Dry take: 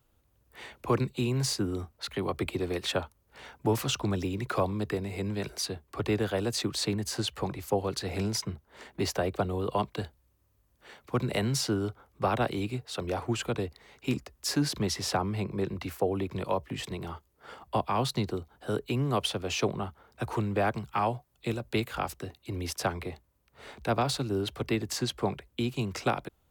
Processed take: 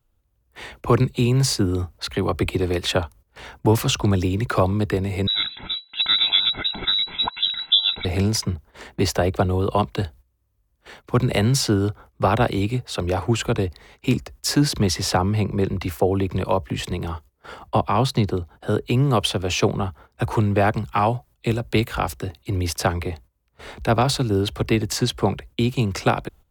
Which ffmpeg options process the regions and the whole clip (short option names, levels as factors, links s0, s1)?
-filter_complex "[0:a]asettb=1/sr,asplit=3[s0][s1][s2];[s0]atrim=end=5.274[s3];[s1]atrim=start=5.27:end=8.05,asetpts=PTS-STARTPTS,afade=t=in:d=0.004:c=qsin,afade=t=out:st=2.776:d=0.004:c=qsin,equalizer=f=1100:t=o:w=0.21:g=-13.5,aecho=1:1:1.6:0.87,atrim=end_sample=122598,lowpass=f=3400:t=q:w=0.5098,lowpass=f=3400:t=q:w=0.6013,lowpass=f=3400:t=q:w=0.9,lowpass=f=3400:t=q:w=2.563,afreqshift=-4000[s4];[s2]atrim=start=8.046[s5];[s3][s4]acrossfade=d=0.004:c1=hsin:c2=qsin[s6];[s6][s5]acrossfade=d=0.004:c1=qsin:c2=hsin,asettb=1/sr,asplit=3[s7][s8][s9];[s7]atrim=end=17.664[s10];[s8]atrim=start=17.66:end=18.9,asetpts=PTS-STARTPTS,afade=t=in:d=0.004:c=qsin,afade=t=out:st=1.236:d=0.004:c=qsin,highpass=47,highshelf=f=4300:g=-4.5[s11];[s9]atrim=start=18.896[s12];[s10][s11]acrossfade=d=0.004:c1=hsin:c2=qsin[s13];[s13][s12]acrossfade=d=0.004:c1=qsin:c2=hsin,agate=range=0.224:threshold=0.002:ratio=16:detection=peak,lowshelf=f=74:g=12,volume=2.51"